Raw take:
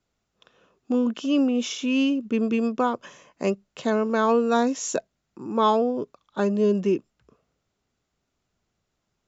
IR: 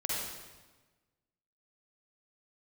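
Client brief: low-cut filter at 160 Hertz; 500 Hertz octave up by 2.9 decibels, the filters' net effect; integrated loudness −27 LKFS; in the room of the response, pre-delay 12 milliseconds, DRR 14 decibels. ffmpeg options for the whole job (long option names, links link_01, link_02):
-filter_complex "[0:a]highpass=160,equalizer=frequency=500:width_type=o:gain=3.5,asplit=2[link_01][link_02];[1:a]atrim=start_sample=2205,adelay=12[link_03];[link_02][link_03]afir=irnorm=-1:irlink=0,volume=-19.5dB[link_04];[link_01][link_04]amix=inputs=2:normalize=0,volume=-4dB"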